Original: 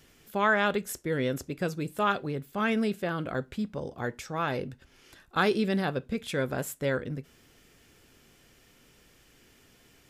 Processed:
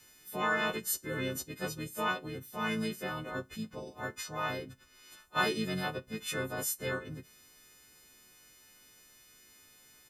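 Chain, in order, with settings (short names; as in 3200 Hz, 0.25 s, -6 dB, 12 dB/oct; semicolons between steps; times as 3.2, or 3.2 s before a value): frequency quantiser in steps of 3 st; harmoniser -12 st -15 dB, -5 st -8 dB; gain -8 dB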